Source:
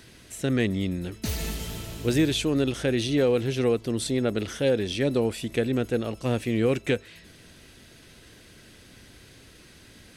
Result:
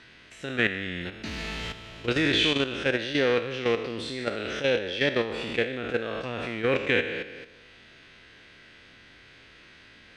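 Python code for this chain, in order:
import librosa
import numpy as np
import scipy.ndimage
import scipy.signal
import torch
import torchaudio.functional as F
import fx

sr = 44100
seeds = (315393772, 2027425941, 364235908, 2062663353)

y = fx.spec_trails(x, sr, decay_s=1.29)
y = fx.peak_eq(y, sr, hz=2100.0, db=7.0, octaves=2.3)
y = fx.level_steps(y, sr, step_db=10)
y = scipy.signal.sosfilt(scipy.signal.butter(2, 3700.0, 'lowpass', fs=sr, output='sos'), y)
y = fx.low_shelf(y, sr, hz=370.0, db=-6.0)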